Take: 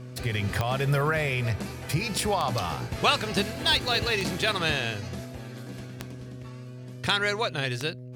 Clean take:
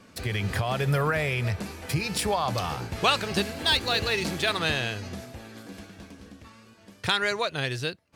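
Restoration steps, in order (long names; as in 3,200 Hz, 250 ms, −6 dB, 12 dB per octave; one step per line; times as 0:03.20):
click removal
hum removal 125.3 Hz, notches 5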